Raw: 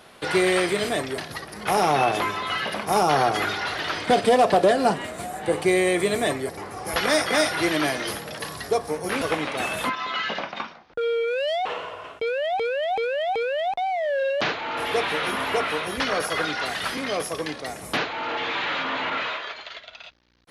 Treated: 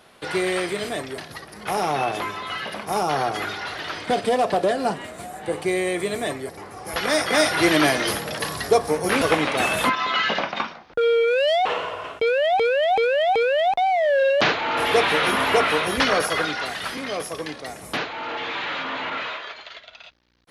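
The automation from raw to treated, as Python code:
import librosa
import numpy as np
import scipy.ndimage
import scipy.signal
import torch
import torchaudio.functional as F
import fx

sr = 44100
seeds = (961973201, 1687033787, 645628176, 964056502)

y = fx.gain(x, sr, db=fx.line((6.86, -3.0), (7.72, 5.5), (16.05, 5.5), (16.76, -1.5)))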